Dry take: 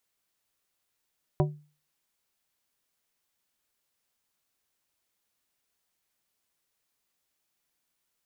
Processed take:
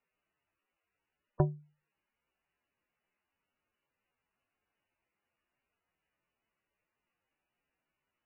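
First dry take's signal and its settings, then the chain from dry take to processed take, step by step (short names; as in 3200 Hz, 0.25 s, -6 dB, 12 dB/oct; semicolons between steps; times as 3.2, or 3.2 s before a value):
glass hit plate, lowest mode 149 Hz, decay 0.37 s, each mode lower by 3 dB, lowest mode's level -19 dB
MP3 8 kbps 16000 Hz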